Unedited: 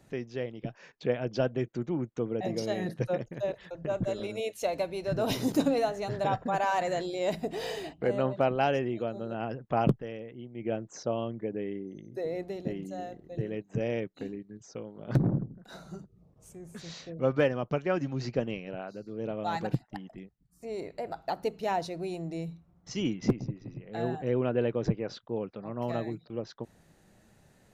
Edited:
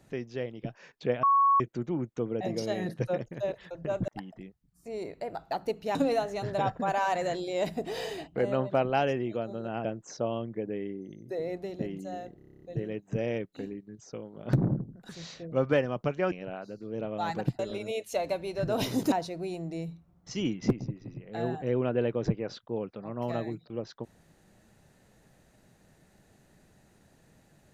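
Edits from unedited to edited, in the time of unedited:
1.23–1.60 s: bleep 1.11 kHz -19 dBFS
4.08–5.61 s: swap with 19.85–21.72 s
9.51–10.71 s: delete
13.23 s: stutter 0.03 s, 9 plays
15.71–16.76 s: delete
17.99–18.58 s: delete

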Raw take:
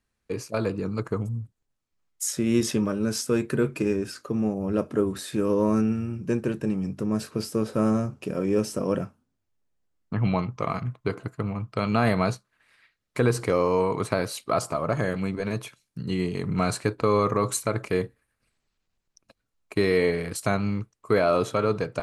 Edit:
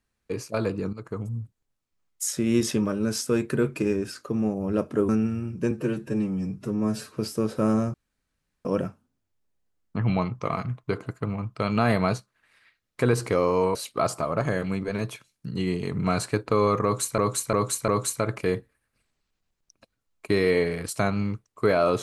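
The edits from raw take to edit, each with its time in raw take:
0.93–1.40 s: fade in linear, from -14 dB
5.09–5.75 s: delete
6.37–7.35 s: stretch 1.5×
8.11–8.82 s: room tone
13.92–14.27 s: delete
17.35–17.70 s: loop, 4 plays

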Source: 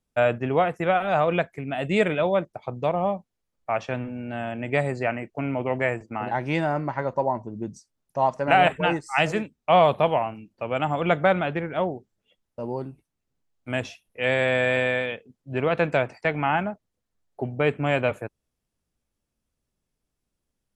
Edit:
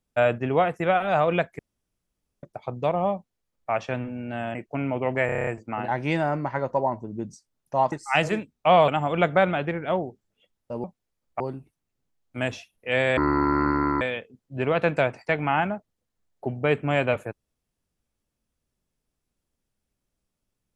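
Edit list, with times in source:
1.59–2.43 s: room tone
3.15–3.71 s: copy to 12.72 s
4.55–5.19 s: delete
5.90 s: stutter 0.03 s, 8 plays
8.35–8.95 s: delete
9.91–10.76 s: delete
14.49–14.97 s: speed 57%

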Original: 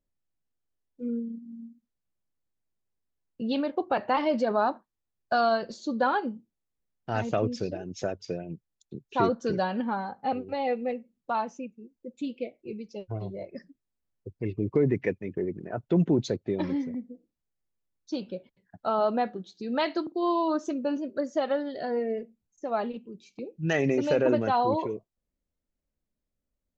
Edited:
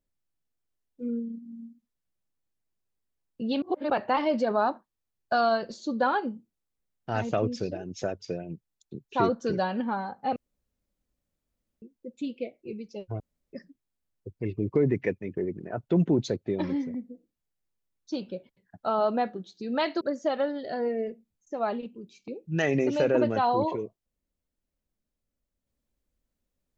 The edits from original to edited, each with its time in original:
3.62–3.90 s: reverse
10.36–11.82 s: room tone
13.20–13.53 s: room tone
20.01–21.12 s: delete

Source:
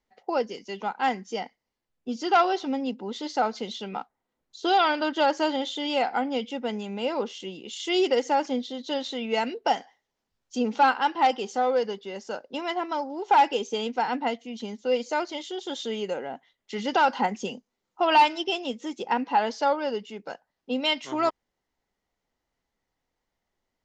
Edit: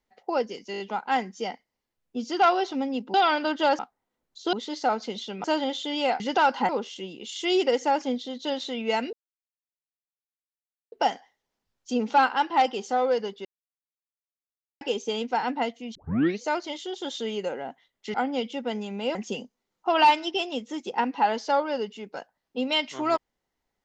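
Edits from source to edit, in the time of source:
0.72 s: stutter 0.02 s, 5 plays
3.06–3.97 s: swap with 4.71–5.36 s
6.12–7.13 s: swap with 16.79–17.28 s
9.57 s: insert silence 1.79 s
12.10–13.46 s: mute
14.60 s: tape start 0.47 s

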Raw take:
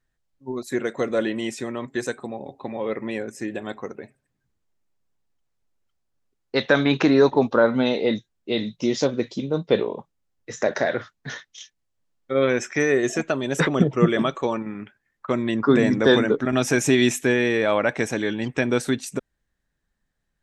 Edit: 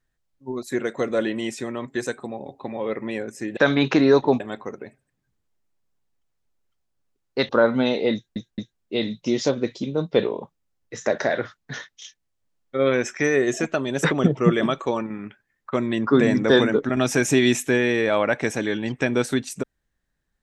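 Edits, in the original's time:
6.66–7.49 s: move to 3.57 s
8.14 s: stutter 0.22 s, 3 plays

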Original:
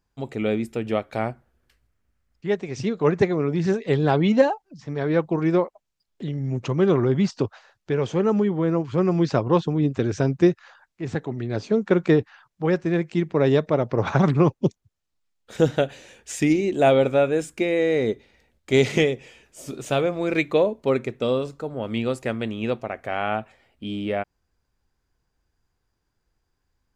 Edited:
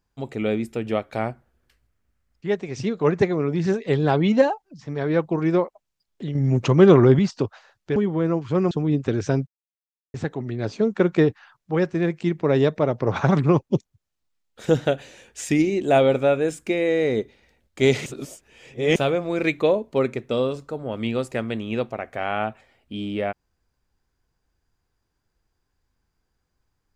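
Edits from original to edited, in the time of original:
6.35–7.19 s: gain +6.5 dB
7.96–8.39 s: delete
9.14–9.62 s: delete
10.38–11.05 s: mute
18.97–19.87 s: reverse

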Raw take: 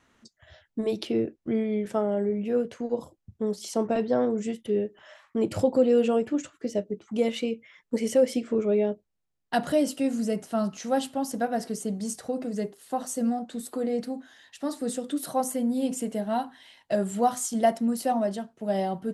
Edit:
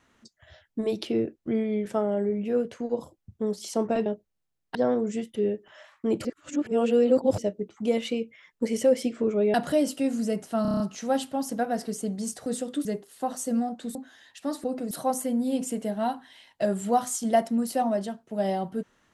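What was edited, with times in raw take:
5.56–6.69 s: reverse
8.85–9.54 s: move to 4.06 s
10.62 s: stutter 0.03 s, 7 plays
12.28–12.55 s: swap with 14.82–15.21 s
13.65–14.13 s: delete

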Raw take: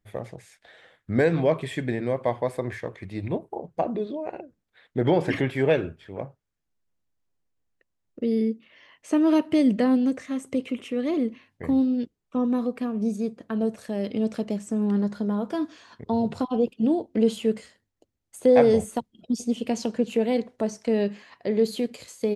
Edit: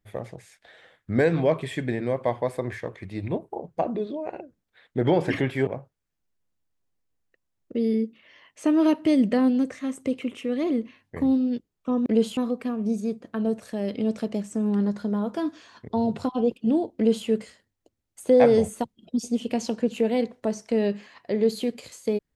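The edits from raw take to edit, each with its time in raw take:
5.67–6.14 s: delete
17.12–17.43 s: copy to 12.53 s

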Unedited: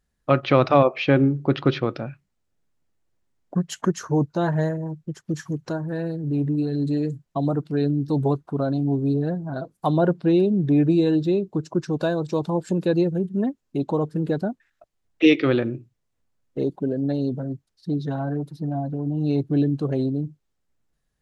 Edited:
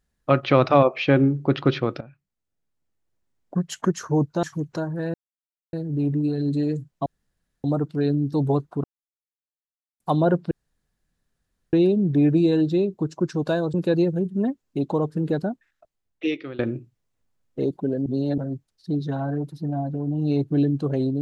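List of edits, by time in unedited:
2.01–3.83 s: fade in, from -14.5 dB
4.43–5.36 s: delete
6.07 s: insert silence 0.59 s
7.40 s: insert room tone 0.58 s
8.60–9.76 s: mute
10.27 s: insert room tone 1.22 s
12.28–12.73 s: delete
14.38–15.58 s: fade out, to -20.5 dB
17.05–17.37 s: reverse

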